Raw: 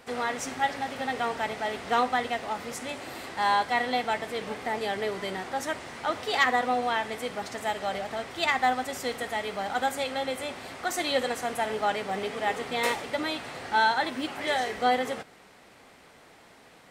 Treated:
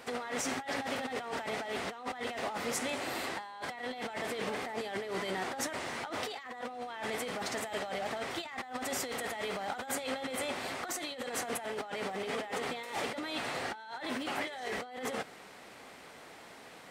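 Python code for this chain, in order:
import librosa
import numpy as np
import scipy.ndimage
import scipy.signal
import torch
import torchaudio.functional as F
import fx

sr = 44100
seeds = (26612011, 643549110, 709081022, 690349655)

y = fx.low_shelf(x, sr, hz=120.0, db=-8.5)
y = fx.over_compress(y, sr, threshold_db=-36.0, ratio=-1.0)
y = y * librosa.db_to_amplitude(-2.5)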